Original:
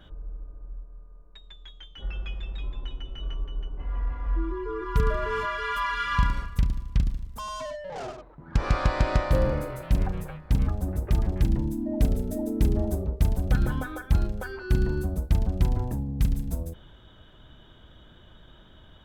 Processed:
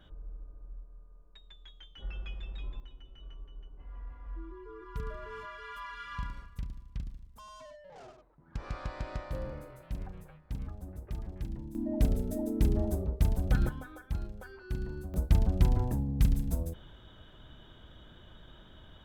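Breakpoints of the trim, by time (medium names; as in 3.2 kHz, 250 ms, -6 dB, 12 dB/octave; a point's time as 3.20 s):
-6.5 dB
from 2.80 s -15 dB
from 11.75 s -4 dB
from 13.69 s -12.5 dB
from 15.14 s -1.5 dB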